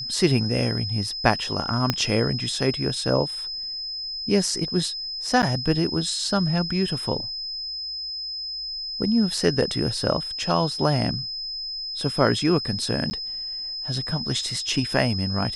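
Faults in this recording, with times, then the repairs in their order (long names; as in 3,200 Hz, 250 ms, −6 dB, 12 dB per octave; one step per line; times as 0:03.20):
whistle 5,100 Hz −29 dBFS
0:01.90: click −6 dBFS
0:05.42–0:05.43: drop-out 8.8 ms
0:13.10–0:13.11: drop-out 10 ms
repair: click removal
notch filter 5,100 Hz, Q 30
repair the gap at 0:05.42, 8.8 ms
repair the gap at 0:13.10, 10 ms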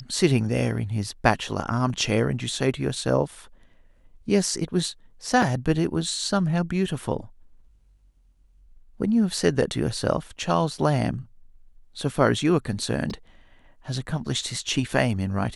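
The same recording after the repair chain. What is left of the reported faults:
0:01.90: click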